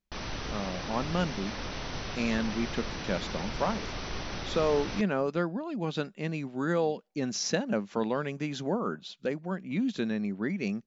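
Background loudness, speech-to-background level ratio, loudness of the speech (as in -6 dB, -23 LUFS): -37.0 LUFS, 5.0 dB, -32.0 LUFS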